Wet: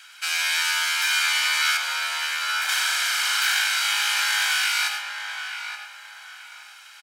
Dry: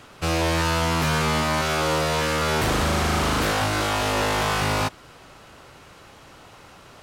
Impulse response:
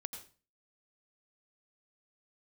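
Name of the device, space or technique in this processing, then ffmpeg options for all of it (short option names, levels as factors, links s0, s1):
microphone above a desk: -filter_complex "[0:a]highpass=f=1500:w=0.5412,highpass=f=1500:w=1.3066,aecho=1:1:1.3:0.63[s0];[1:a]atrim=start_sample=2205[s1];[s0][s1]afir=irnorm=-1:irlink=0,asettb=1/sr,asplit=3[s2][s3][s4];[s2]atrim=end=1.774[s5];[s3]atrim=start=1.77:end=2.69,asetpts=PTS-STARTPTS,afade=t=in:d=0.004:c=qsin,afade=t=out:st=0.916:d=0.004:c=qsin,tiltshelf=f=840:g=6.5[s6];[s4]atrim=start=2.686[s7];[s5][s6]acrossfade=d=0.004:c1=hsin:c2=qsin[s8];[s8][s7]acrossfade=d=0.004:c1=qsin:c2=hsin,asplit=2[s9][s10];[s10]adelay=875,lowpass=f=1900:p=1,volume=0.531,asplit=2[s11][s12];[s12]adelay=875,lowpass=f=1900:p=1,volume=0.35,asplit=2[s13][s14];[s14]adelay=875,lowpass=f=1900:p=1,volume=0.35,asplit=2[s15][s16];[s16]adelay=875,lowpass=f=1900:p=1,volume=0.35[s17];[s9][s11][s13][s15][s17]amix=inputs=5:normalize=0,volume=2.11"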